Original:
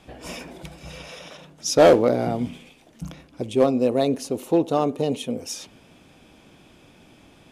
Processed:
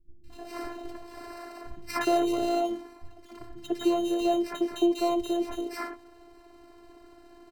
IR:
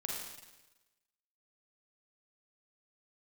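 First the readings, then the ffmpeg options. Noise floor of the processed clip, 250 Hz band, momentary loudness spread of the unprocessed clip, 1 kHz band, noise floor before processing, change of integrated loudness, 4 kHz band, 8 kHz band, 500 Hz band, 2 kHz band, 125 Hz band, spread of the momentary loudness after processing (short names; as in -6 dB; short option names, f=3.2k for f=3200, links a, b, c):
-54 dBFS, -3.5 dB, 24 LU, -3.5 dB, -53 dBFS, -7.5 dB, -6.0 dB, -11.5 dB, -9.0 dB, -4.5 dB, -20.5 dB, 19 LU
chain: -filter_complex "[0:a]highshelf=f=10k:g=9.5,aecho=1:1:2.7:0.6,acrusher=samples=13:mix=1:aa=0.000001,acompressor=threshold=-20dB:ratio=5,aemphasis=mode=reproduction:type=cd,afftfilt=real='hypot(re,im)*cos(PI*b)':imag='0':win_size=512:overlap=0.75,acrossover=split=180|2300[a][b][c];[c]adelay=240[d];[b]adelay=300[e];[a][e][d]amix=inputs=3:normalize=0,volume=1.5dB"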